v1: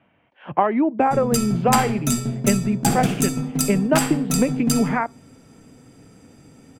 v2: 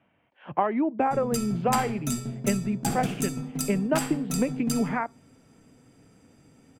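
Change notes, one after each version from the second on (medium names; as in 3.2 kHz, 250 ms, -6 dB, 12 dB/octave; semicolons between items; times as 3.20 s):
speech -6.0 dB; background -8.5 dB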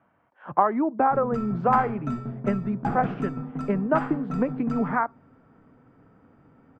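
speech: remove Chebyshev low-pass 2.8 kHz, order 3; master: add resonant low-pass 1.3 kHz, resonance Q 2.1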